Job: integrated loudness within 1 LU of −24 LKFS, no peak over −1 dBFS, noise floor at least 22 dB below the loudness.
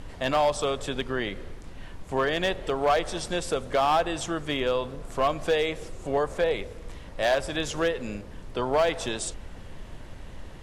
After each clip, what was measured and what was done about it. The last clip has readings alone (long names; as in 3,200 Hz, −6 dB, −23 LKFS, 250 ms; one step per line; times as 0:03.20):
share of clipped samples 0.8%; peaks flattened at −16.5 dBFS; background noise floor −42 dBFS; target noise floor −50 dBFS; integrated loudness −27.5 LKFS; sample peak −16.5 dBFS; target loudness −24.0 LKFS
→ clipped peaks rebuilt −16.5 dBFS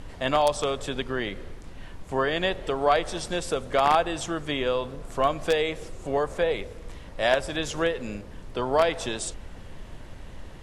share of clipped samples 0.0%; background noise floor −42 dBFS; target noise floor −49 dBFS
→ noise reduction from a noise print 7 dB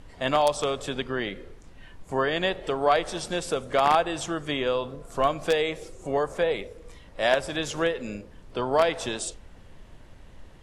background noise floor −49 dBFS; integrated loudness −26.5 LKFS; sample peak −7.5 dBFS; target loudness −24.0 LKFS
→ level +2.5 dB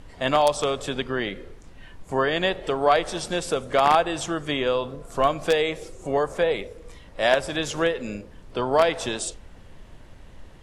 integrated loudness −24.0 LKFS; sample peak −5.0 dBFS; background noise floor −47 dBFS